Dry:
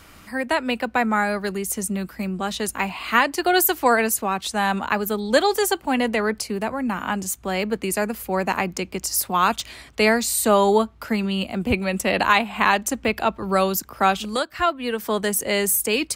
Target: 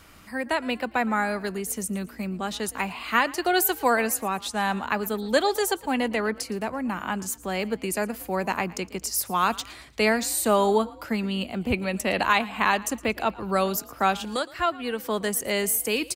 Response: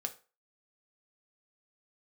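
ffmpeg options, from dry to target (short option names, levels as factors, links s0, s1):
-filter_complex "[0:a]asplit=4[s0][s1][s2][s3];[s1]adelay=114,afreqshift=45,volume=0.0944[s4];[s2]adelay=228,afreqshift=90,volume=0.0407[s5];[s3]adelay=342,afreqshift=135,volume=0.0174[s6];[s0][s4][s5][s6]amix=inputs=4:normalize=0,volume=0.631"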